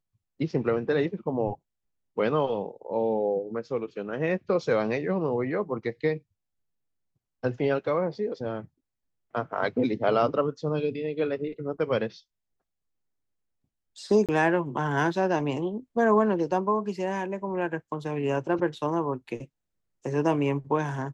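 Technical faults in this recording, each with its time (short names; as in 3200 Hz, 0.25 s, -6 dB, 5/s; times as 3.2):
14.26–14.29 gap 27 ms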